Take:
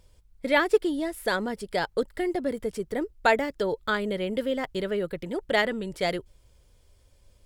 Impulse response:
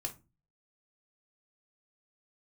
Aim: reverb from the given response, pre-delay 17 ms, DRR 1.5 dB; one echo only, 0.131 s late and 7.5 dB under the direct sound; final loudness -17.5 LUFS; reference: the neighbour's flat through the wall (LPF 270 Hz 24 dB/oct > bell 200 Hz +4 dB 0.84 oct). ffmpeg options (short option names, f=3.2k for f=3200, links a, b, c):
-filter_complex "[0:a]aecho=1:1:131:0.422,asplit=2[a][b];[1:a]atrim=start_sample=2205,adelay=17[c];[b][c]afir=irnorm=-1:irlink=0,volume=-1dB[d];[a][d]amix=inputs=2:normalize=0,lowpass=f=270:w=0.5412,lowpass=f=270:w=1.3066,equalizer=f=200:t=o:w=0.84:g=4,volume=15.5dB"